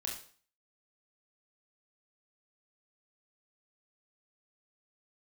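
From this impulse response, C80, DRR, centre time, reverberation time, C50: 10.5 dB, -2.0 dB, 32 ms, 0.45 s, 5.5 dB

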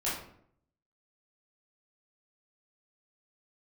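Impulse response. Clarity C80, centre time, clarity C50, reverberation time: 7.0 dB, 49 ms, 2.5 dB, 0.65 s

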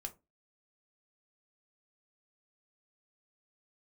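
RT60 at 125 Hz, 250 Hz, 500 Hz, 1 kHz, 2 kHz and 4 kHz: 0.30, 0.30, 0.25, 0.20, 0.15, 0.15 s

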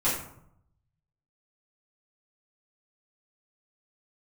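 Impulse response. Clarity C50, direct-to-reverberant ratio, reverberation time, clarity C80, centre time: 4.0 dB, -10.5 dB, 0.70 s, 7.5 dB, 41 ms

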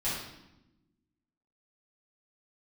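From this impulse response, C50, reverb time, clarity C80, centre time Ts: 1.0 dB, 0.95 s, 4.5 dB, 60 ms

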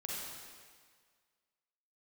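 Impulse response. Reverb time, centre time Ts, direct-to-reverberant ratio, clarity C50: 1.8 s, 0.122 s, -5.0 dB, -3.5 dB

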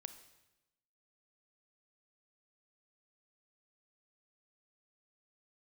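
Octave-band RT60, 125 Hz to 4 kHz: 1.1, 1.1, 1.0, 0.95, 0.95, 0.90 s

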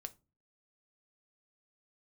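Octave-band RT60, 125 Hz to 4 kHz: 0.55, 0.50, 0.35, 0.25, 0.20, 0.20 s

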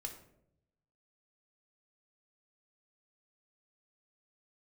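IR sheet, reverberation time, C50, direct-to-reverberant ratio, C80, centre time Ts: 0.75 s, 9.0 dB, 3.5 dB, 12.0 dB, 16 ms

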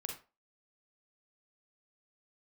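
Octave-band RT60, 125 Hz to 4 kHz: 0.25, 0.25, 0.35, 0.30, 0.25, 0.25 s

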